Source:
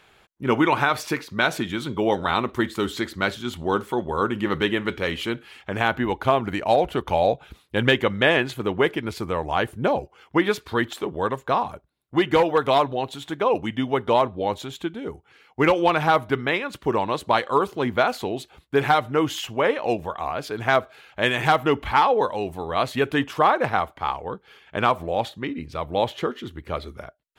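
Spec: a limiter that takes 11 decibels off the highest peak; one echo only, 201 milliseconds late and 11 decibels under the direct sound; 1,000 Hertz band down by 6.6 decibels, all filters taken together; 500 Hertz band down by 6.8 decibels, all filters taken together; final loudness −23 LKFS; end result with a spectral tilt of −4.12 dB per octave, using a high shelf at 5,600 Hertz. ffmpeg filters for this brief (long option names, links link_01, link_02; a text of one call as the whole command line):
ffmpeg -i in.wav -af "equalizer=frequency=500:width_type=o:gain=-7,equalizer=frequency=1000:width_type=o:gain=-6,highshelf=frequency=5600:gain=-7,alimiter=limit=-18dB:level=0:latency=1,aecho=1:1:201:0.282,volume=7.5dB" out.wav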